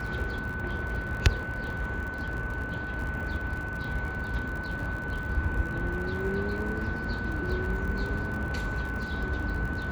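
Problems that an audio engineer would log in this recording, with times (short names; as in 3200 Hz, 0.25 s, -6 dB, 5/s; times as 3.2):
crackle 60/s -36 dBFS
tone 1500 Hz -35 dBFS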